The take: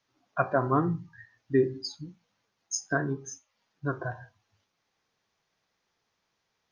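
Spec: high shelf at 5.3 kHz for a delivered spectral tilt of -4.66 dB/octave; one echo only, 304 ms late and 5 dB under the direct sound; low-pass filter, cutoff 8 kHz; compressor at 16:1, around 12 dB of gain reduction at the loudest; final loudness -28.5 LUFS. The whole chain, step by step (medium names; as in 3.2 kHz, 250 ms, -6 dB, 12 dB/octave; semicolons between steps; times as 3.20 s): low-pass 8 kHz; treble shelf 5.3 kHz -5 dB; compression 16:1, threshold -30 dBFS; delay 304 ms -5 dB; trim +9.5 dB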